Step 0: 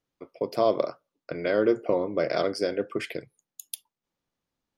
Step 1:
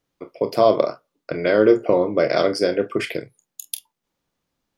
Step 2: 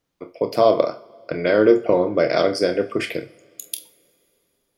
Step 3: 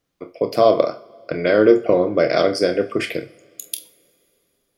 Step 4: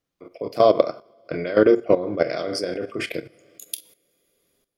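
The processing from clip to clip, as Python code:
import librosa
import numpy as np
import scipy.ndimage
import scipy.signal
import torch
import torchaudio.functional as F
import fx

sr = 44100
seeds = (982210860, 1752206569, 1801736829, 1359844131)

y1 = fx.room_early_taps(x, sr, ms=(28, 45), db=(-12.0, -15.5))
y1 = F.gain(torch.from_numpy(y1), 7.0).numpy()
y2 = fx.rev_double_slope(y1, sr, seeds[0], early_s=0.44, late_s=3.1, knee_db=-22, drr_db=11.5)
y3 = fx.notch(y2, sr, hz=910.0, q=10.0)
y3 = F.gain(torch.from_numpy(y3), 1.5).numpy()
y4 = fx.level_steps(y3, sr, step_db=14)
y4 = F.gain(torch.from_numpy(y4), 1.0).numpy()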